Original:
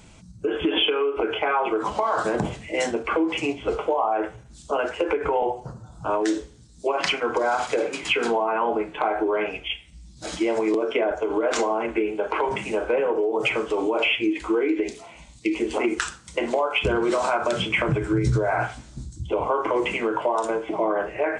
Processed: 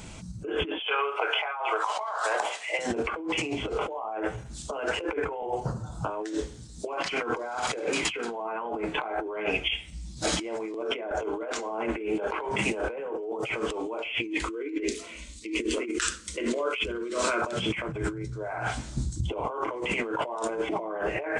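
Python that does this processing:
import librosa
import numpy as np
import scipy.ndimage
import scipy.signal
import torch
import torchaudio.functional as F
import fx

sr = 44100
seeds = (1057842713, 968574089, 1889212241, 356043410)

y = fx.highpass(x, sr, hz=650.0, slope=24, at=(0.79, 2.79))
y = fx.fixed_phaser(y, sr, hz=330.0, stages=4, at=(14.45, 17.42))
y = fx.high_shelf(y, sr, hz=8700.0, db=2.5)
y = fx.over_compress(y, sr, threshold_db=-31.0, ratio=-1.0)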